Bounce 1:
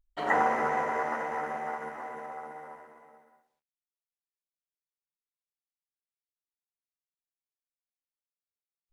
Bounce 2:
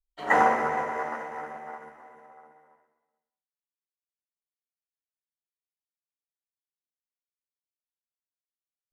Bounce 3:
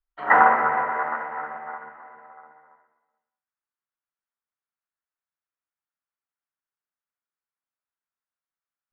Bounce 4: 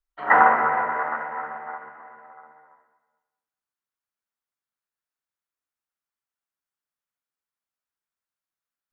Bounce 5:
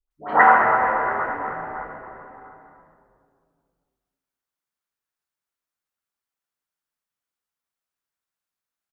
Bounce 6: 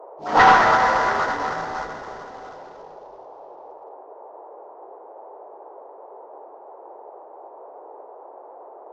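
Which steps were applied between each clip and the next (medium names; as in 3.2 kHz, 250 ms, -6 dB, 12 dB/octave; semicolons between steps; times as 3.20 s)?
three bands expanded up and down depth 100%; trim -1 dB
FFT filter 460 Hz 0 dB, 1.4 kHz +12 dB, 6.2 kHz -18 dB; trim -1.5 dB
reverberation RT60 1.2 s, pre-delay 130 ms, DRR 16.5 dB
phase dispersion highs, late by 111 ms, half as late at 860 Hz; on a send: frequency-shifting echo 225 ms, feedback 58%, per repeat -120 Hz, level -12 dB; on the sum: trim +2 dB
CVSD coder 32 kbps; band noise 380–930 Hz -45 dBFS; trim +3 dB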